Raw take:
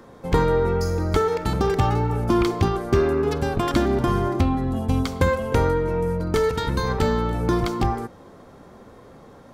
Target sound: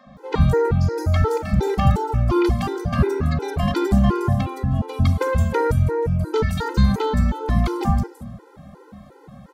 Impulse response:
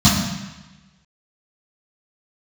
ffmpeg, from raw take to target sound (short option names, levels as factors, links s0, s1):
-filter_complex "[0:a]acrossover=split=280|5800[s0][s1][s2];[s0]adelay=60[s3];[s2]adelay=170[s4];[s3][s1][s4]amix=inputs=3:normalize=0,asplit=2[s5][s6];[1:a]atrim=start_sample=2205,lowshelf=f=150:g=7.5[s7];[s6][s7]afir=irnorm=-1:irlink=0,volume=0.0133[s8];[s5][s8]amix=inputs=2:normalize=0,afftfilt=real='re*gt(sin(2*PI*2.8*pts/sr)*(1-2*mod(floor(b*sr/1024/260),2)),0)':imag='im*gt(sin(2*PI*2.8*pts/sr)*(1-2*mod(floor(b*sr/1024/260),2)),0)':win_size=1024:overlap=0.75,volume=1.41"